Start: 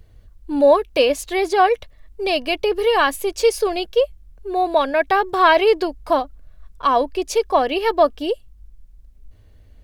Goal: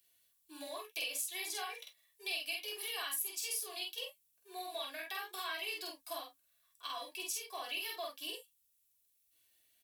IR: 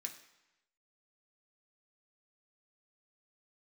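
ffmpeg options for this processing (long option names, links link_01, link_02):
-filter_complex "[0:a]aderivative,acrossover=split=360|1700[link_01][link_02][link_03];[link_01]acrusher=samples=32:mix=1:aa=0.000001[link_04];[link_04][link_02][link_03]amix=inputs=3:normalize=0,acompressor=threshold=-36dB:ratio=5,asplit=2[link_05][link_06];[link_06]adelay=47,volume=-2dB[link_07];[link_05][link_07]amix=inputs=2:normalize=0[link_08];[1:a]atrim=start_sample=2205,atrim=end_sample=3528,asetrate=66150,aresample=44100[link_09];[link_08][link_09]afir=irnorm=-1:irlink=0,volume=4.5dB"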